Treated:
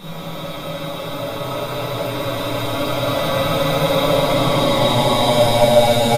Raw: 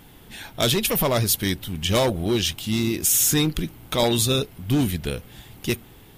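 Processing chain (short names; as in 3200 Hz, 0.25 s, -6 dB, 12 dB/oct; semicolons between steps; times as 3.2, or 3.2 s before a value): spectral swells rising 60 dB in 1.16 s; bell 7800 Hz -5.5 dB 0.58 oct; comb 7.1 ms, depth 95%; Paulstretch 16×, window 0.10 s, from 3.68; shoebox room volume 190 m³, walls hard, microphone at 1.8 m; gain -13 dB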